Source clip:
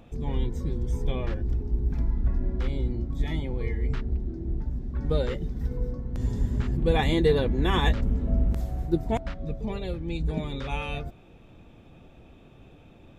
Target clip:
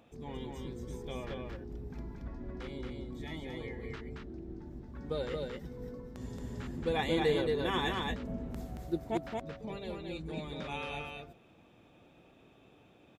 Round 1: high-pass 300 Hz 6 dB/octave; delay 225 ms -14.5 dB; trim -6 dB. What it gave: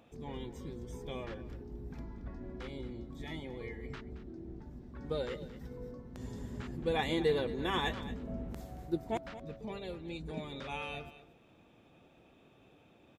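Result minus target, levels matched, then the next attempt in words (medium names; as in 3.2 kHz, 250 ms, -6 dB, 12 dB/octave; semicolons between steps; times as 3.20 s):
echo-to-direct -11.5 dB
high-pass 300 Hz 6 dB/octave; delay 225 ms -3 dB; trim -6 dB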